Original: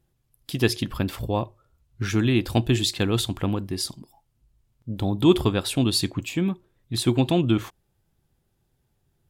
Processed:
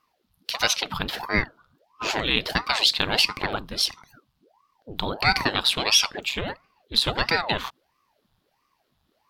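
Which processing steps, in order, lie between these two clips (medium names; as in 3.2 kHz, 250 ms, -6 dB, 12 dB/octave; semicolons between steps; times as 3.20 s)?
graphic EQ 125/250/500/1000/4000/8000 Hz -7/-11/-5/+10/+11/-7 dB; loudness maximiser +8 dB; ring modulator with a swept carrier 610 Hz, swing 90%, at 1.5 Hz; trim -4 dB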